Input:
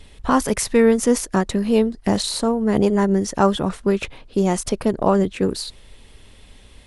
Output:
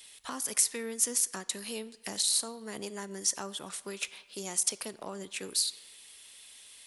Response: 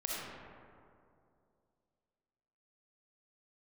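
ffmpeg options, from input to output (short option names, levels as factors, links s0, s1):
-filter_complex "[0:a]acrossover=split=390[s0][s1];[s1]acompressor=threshold=0.0447:ratio=10[s2];[s0][s2]amix=inputs=2:normalize=0,aderivative,asplit=2[s3][s4];[1:a]atrim=start_sample=2205,asetrate=79380,aresample=44100,lowshelf=f=380:g=-11.5[s5];[s4][s5]afir=irnorm=-1:irlink=0,volume=0.211[s6];[s3][s6]amix=inputs=2:normalize=0,volume=1.78"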